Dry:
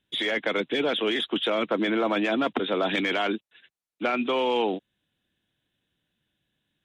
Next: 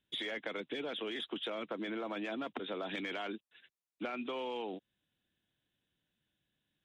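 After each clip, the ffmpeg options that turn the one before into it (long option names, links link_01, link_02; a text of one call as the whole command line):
ffmpeg -i in.wav -af "acompressor=threshold=-30dB:ratio=6,volume=-6.5dB" out.wav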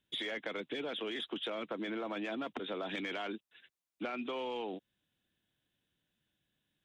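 ffmpeg -i in.wav -af "asoftclip=type=tanh:threshold=-26.5dB,volume=1dB" out.wav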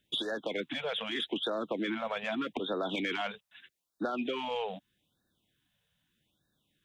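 ffmpeg -i in.wav -af "afftfilt=real='re*(1-between(b*sr/1024,280*pow(2600/280,0.5+0.5*sin(2*PI*0.81*pts/sr))/1.41,280*pow(2600/280,0.5+0.5*sin(2*PI*0.81*pts/sr))*1.41))':imag='im*(1-between(b*sr/1024,280*pow(2600/280,0.5+0.5*sin(2*PI*0.81*pts/sr))/1.41,280*pow(2600/280,0.5+0.5*sin(2*PI*0.81*pts/sr))*1.41))':win_size=1024:overlap=0.75,volume=6dB" out.wav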